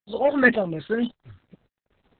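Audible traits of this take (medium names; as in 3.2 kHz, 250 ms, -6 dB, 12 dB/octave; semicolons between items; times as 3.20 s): tremolo saw up 1.8 Hz, depth 80%; phasing stages 8, 2 Hz, lowest notch 680–2000 Hz; a quantiser's noise floor 12-bit, dither none; Opus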